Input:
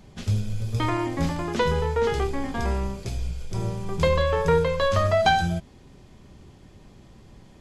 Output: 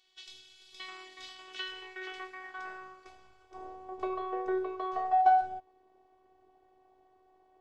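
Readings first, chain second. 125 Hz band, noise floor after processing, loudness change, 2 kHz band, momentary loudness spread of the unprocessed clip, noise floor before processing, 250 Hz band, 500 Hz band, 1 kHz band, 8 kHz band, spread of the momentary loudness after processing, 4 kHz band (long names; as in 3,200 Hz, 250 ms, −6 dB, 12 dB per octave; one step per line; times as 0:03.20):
below −40 dB, −67 dBFS, −8.0 dB, −12.5 dB, 10 LU, −50 dBFS, −14.5 dB, −15.0 dB, −3.0 dB, below −15 dB, 23 LU, −11.0 dB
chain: band-pass filter sweep 3,500 Hz → 690 Hz, 0:01.27–0:03.96
phases set to zero 375 Hz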